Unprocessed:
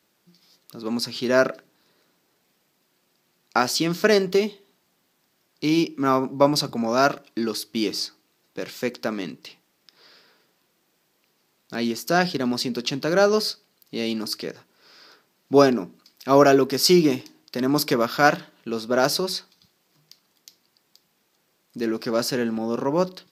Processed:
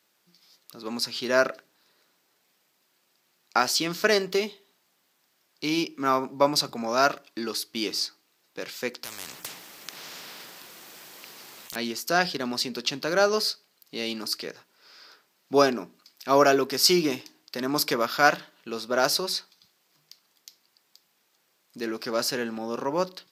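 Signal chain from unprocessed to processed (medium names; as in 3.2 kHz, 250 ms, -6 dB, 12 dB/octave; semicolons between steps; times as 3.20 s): bass shelf 430 Hz -10.5 dB; 9.04–11.76 s: spectrum-flattening compressor 10:1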